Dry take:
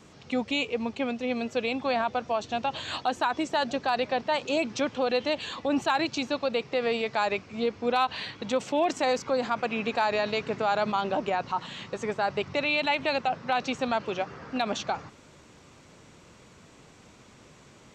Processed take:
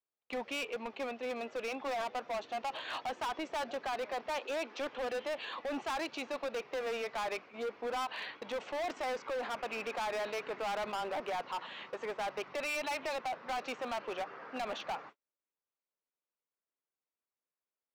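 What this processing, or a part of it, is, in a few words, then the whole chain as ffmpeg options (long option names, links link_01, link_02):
walkie-talkie: -filter_complex "[0:a]asettb=1/sr,asplit=3[link_01][link_02][link_03];[link_01]atrim=end=4.394[link_04];[link_02]atrim=start=4.39:end=4.89,asetpts=PTS-STARTPTS,afade=type=in:duration=0.004:curve=qsin,afade=type=out:start_time=0.496:duration=0.004:curve=qsin,highpass=frequency=260:width=0.5412,highpass=frequency=260:width=1.3066[link_05];[link_03]atrim=start=4.886[link_06];[link_04][link_05]acrossfade=duration=0.004:curve1=hsin:curve2=qsin[link_07];[link_07][link_06]acrossfade=duration=0.004:curve1=qsin:curve2=hsin,highpass=470,lowpass=2600,asoftclip=type=hard:threshold=-31.5dB,agate=range=-42dB:threshold=-49dB:ratio=16:detection=peak,volume=-2dB"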